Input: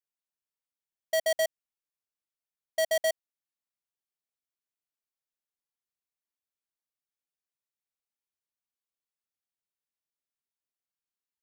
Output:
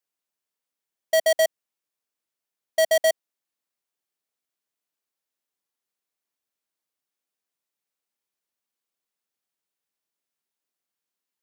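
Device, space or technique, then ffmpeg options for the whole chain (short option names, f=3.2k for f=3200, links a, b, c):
filter by subtraction: -filter_complex "[0:a]asplit=2[a][b];[b]lowpass=310,volume=-1[c];[a][c]amix=inputs=2:normalize=0,volume=6dB"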